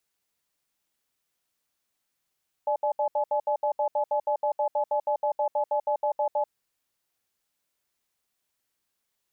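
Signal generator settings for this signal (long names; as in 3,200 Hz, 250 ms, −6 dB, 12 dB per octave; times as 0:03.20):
tone pair in a cadence 592 Hz, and 850 Hz, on 0.09 s, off 0.07 s, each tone −25 dBFS 3.82 s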